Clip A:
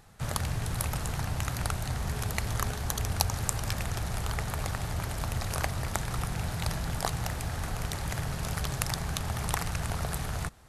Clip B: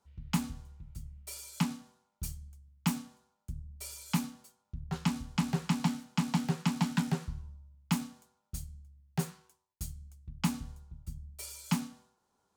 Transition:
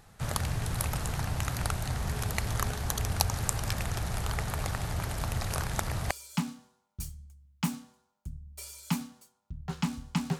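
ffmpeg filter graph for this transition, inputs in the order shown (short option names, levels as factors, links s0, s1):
-filter_complex "[0:a]apad=whole_dur=10.39,atrim=end=10.39,asplit=2[s0][s1];[s0]atrim=end=5.642[s2];[s1]atrim=start=5.638:end=6.112,asetpts=PTS-STARTPTS,areverse[s3];[1:a]atrim=start=1.338:end=5.62[s4];[s2][s3]acrossfade=d=0.004:c1=hsin:c2=hsin[s5];[s5][s4]acrossfade=d=0.004:c1=hsin:c2=hsin"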